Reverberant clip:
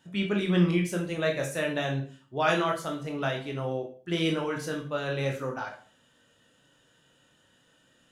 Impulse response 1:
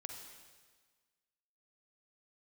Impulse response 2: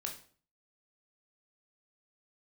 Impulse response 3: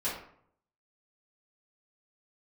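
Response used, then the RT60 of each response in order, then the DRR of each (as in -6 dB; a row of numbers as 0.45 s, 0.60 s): 2; 1.5 s, 0.45 s, 0.60 s; 3.0 dB, 0.5 dB, -11.0 dB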